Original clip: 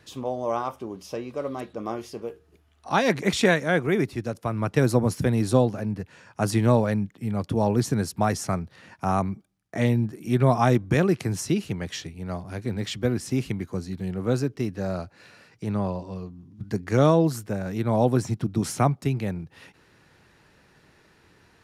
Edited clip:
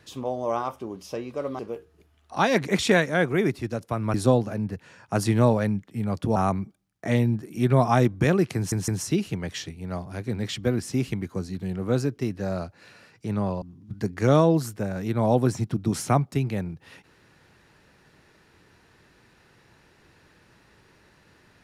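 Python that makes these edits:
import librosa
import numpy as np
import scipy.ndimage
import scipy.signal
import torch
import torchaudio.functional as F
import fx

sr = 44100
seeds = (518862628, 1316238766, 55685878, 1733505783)

y = fx.edit(x, sr, fx.cut(start_s=1.59, length_s=0.54),
    fx.cut(start_s=4.68, length_s=0.73),
    fx.cut(start_s=7.63, length_s=1.43),
    fx.stutter(start_s=11.26, slice_s=0.16, count=3),
    fx.cut(start_s=16.0, length_s=0.32), tone=tone)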